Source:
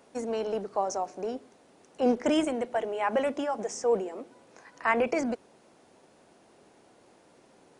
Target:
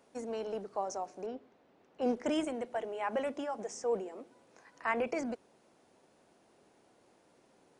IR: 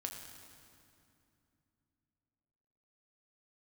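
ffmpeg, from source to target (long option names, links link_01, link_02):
-filter_complex "[0:a]asettb=1/sr,asplit=3[link_01][link_02][link_03];[link_01]atrim=end=1.264[link_04];[link_02]atrim=start=1.26:end=2.01,asetpts=PTS-STARTPTS,afade=type=in:duration=0.004:curve=qsin,afade=type=out:start_time=0.746:duration=0.004:curve=qsin,lowpass=3300[link_05];[link_03]atrim=start=2.006[link_06];[link_04][link_05]acrossfade=duration=0.004:curve1=hsin:curve2=qsin[link_07];[link_07][link_06]acrossfade=duration=0.004:curve1=qsin:curve2=hsin,volume=-7dB"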